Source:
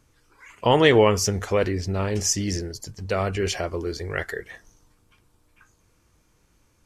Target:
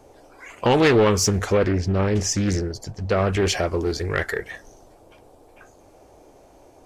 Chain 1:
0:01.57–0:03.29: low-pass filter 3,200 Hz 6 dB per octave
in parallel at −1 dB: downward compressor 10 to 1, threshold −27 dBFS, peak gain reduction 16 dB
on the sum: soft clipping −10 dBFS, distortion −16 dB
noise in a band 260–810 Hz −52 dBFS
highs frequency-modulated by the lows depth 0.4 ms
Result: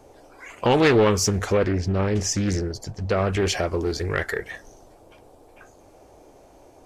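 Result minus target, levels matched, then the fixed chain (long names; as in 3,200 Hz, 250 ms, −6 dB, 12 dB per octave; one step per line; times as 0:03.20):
downward compressor: peak gain reduction +7 dB
0:01.57–0:03.29: low-pass filter 3,200 Hz 6 dB per octave
in parallel at −1 dB: downward compressor 10 to 1, threshold −19.5 dBFS, peak gain reduction 9 dB
on the sum: soft clipping −10 dBFS, distortion −15 dB
noise in a band 260–810 Hz −52 dBFS
highs frequency-modulated by the lows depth 0.4 ms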